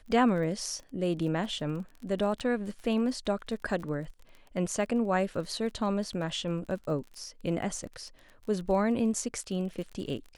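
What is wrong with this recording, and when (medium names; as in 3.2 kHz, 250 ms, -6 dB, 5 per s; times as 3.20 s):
crackle 30 per s -39 dBFS
2.40–2.41 s: dropout 6.4 ms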